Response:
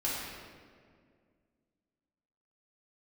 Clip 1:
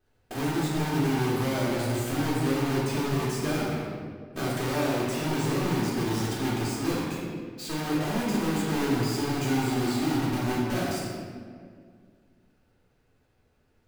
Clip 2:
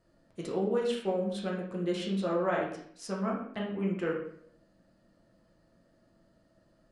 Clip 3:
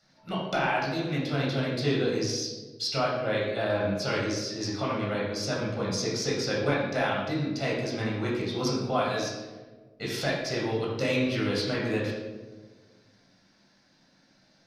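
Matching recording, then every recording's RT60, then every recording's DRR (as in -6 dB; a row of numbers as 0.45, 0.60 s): 1; 2.0, 0.60, 1.4 s; -8.5, -3.5, -4.5 dB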